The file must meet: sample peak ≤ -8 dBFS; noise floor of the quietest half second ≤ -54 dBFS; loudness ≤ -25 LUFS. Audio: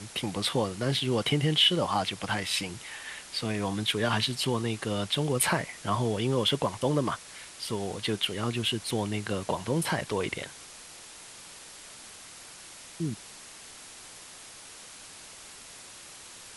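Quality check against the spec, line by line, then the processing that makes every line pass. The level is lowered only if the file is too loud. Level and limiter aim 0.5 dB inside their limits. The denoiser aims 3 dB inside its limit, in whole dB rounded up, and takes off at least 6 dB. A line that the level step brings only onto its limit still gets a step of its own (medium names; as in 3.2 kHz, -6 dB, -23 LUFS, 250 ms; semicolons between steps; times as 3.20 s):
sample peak -11.0 dBFS: pass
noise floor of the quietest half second -47 dBFS: fail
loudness -29.0 LUFS: pass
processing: noise reduction 10 dB, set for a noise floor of -47 dBFS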